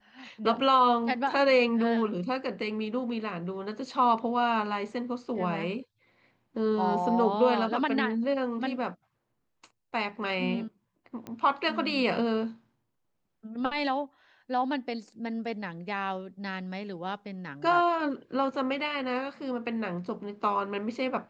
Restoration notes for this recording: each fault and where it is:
11.27 pop -25 dBFS

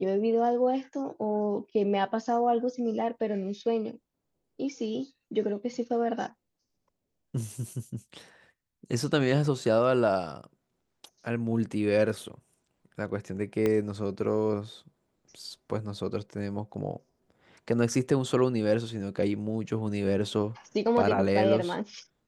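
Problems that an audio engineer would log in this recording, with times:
13.66 pop -15 dBFS

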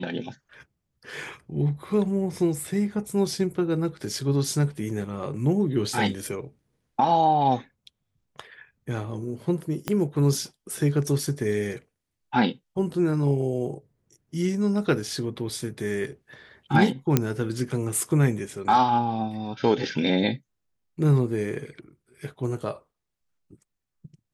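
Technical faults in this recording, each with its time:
9.88 pop -11 dBFS
17.17 pop -5 dBFS

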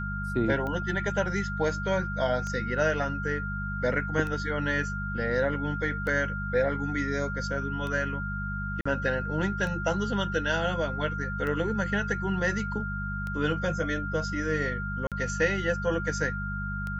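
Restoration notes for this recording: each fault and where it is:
hum 50 Hz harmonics 4 -34 dBFS
tick 33 1/3 rpm -23 dBFS
tone 1400 Hz -34 dBFS
8.81–8.86 gap 45 ms
15.07–15.12 gap 47 ms

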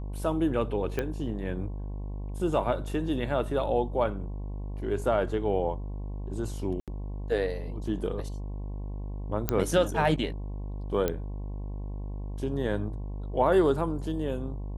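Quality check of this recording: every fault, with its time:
buzz 50 Hz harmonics 22 -35 dBFS
0.99 pop -16 dBFS
6.8–6.88 gap 77 ms
9.49 pop -9 dBFS
11.08 pop -14 dBFS

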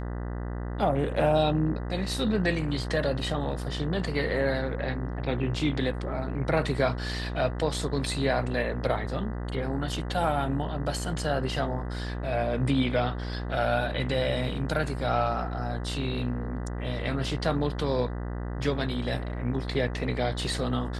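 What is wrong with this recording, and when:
buzz 60 Hz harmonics 33 -33 dBFS

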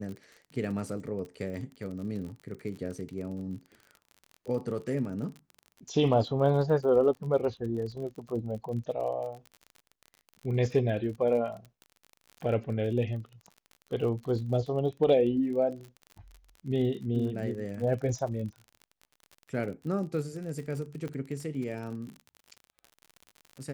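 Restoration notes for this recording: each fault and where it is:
crackle 42/s -38 dBFS
21.08 pop -26 dBFS

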